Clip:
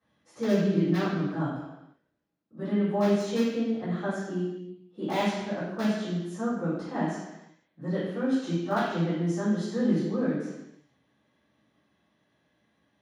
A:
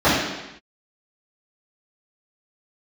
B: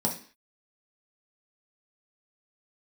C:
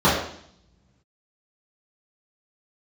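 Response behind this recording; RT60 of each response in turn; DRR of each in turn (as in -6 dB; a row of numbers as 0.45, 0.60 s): A; not exponential, 0.45 s, 0.65 s; -14.5, -1.5, -11.5 dB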